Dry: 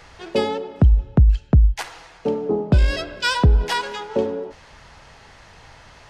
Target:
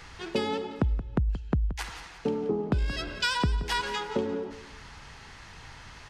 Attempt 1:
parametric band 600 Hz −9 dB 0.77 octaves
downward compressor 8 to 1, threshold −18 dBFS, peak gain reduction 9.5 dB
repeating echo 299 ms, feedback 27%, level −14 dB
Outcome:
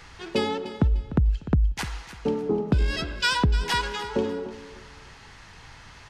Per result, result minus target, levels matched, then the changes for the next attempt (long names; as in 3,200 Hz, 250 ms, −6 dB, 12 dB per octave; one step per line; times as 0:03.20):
echo 123 ms late; downward compressor: peak gain reduction −5.5 dB
change: repeating echo 176 ms, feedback 27%, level −14 dB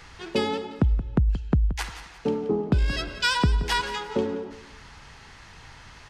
downward compressor: peak gain reduction −5.5 dB
change: downward compressor 8 to 1, threshold −24 dBFS, peak gain reduction 15 dB